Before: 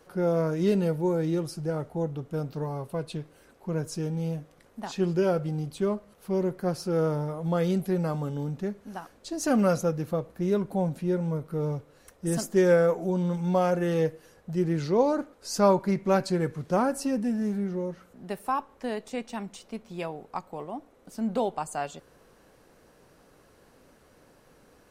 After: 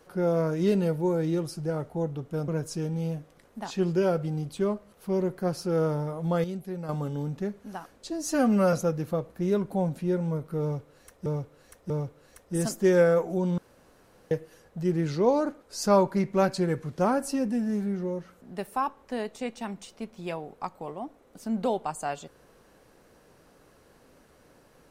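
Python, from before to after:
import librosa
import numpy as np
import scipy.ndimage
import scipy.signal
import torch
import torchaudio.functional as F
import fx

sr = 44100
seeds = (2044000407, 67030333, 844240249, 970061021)

y = fx.edit(x, sr, fx.cut(start_s=2.48, length_s=1.21),
    fx.clip_gain(start_s=7.65, length_s=0.45, db=-8.5),
    fx.stretch_span(start_s=9.31, length_s=0.42, factor=1.5),
    fx.repeat(start_s=11.62, length_s=0.64, count=3),
    fx.room_tone_fill(start_s=13.3, length_s=0.73), tone=tone)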